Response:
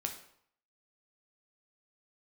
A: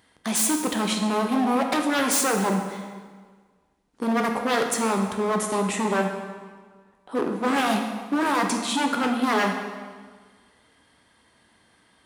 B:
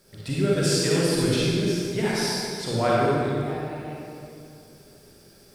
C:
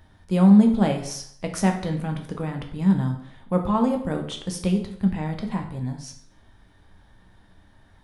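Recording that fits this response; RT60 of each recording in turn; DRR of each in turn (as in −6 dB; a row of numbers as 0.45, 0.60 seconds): C; 1.6, 2.4, 0.65 seconds; 3.0, −7.0, 3.0 decibels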